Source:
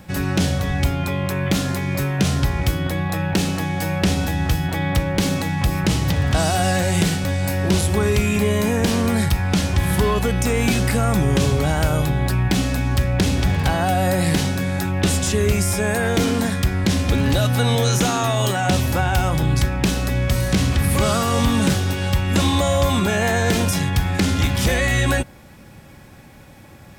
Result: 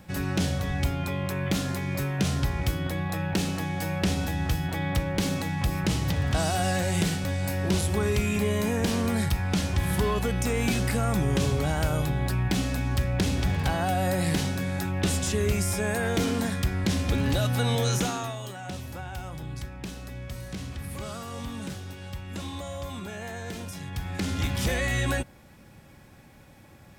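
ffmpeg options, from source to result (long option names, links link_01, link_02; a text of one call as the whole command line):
ffmpeg -i in.wav -af "volume=3dB,afade=type=out:start_time=17.94:duration=0.47:silence=0.281838,afade=type=in:start_time=23.78:duration=0.76:silence=0.316228" out.wav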